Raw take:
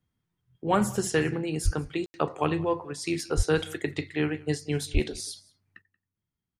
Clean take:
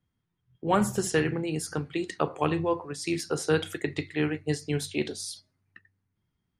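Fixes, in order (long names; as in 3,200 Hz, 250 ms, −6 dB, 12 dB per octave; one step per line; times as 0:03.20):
0:01.64–0:01.76: high-pass filter 140 Hz 24 dB per octave
0:03.36–0:03.48: high-pass filter 140 Hz 24 dB per octave
0:04.93–0:05.05: high-pass filter 140 Hz 24 dB per octave
ambience match 0:02.06–0:02.14
echo removal 181 ms −23 dB
level 0 dB, from 0:05.82 +9.5 dB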